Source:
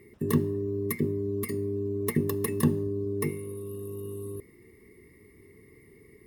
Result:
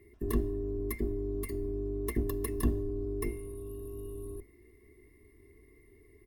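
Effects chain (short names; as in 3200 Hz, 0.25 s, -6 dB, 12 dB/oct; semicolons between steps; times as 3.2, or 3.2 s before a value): octaver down 2 oct, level +1 dB; comb 2.9 ms, depth 66%; gain -8.5 dB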